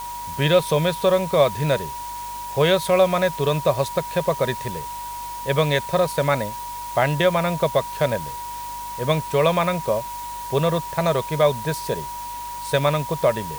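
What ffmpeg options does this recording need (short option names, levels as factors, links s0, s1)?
-af "bandreject=f=49.9:t=h:w=4,bandreject=f=99.8:t=h:w=4,bandreject=f=149.7:t=h:w=4,bandreject=f=199.6:t=h:w=4,bandreject=f=249.5:t=h:w=4,bandreject=f=960:w=30,afftdn=nr=30:nf=-32"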